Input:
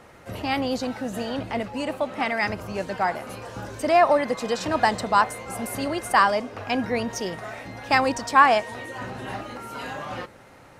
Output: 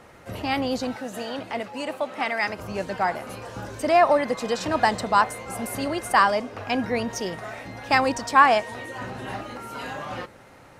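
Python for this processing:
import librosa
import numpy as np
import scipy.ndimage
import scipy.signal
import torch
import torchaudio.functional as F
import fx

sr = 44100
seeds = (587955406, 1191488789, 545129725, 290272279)

y = fx.highpass(x, sr, hz=370.0, slope=6, at=(0.96, 2.59))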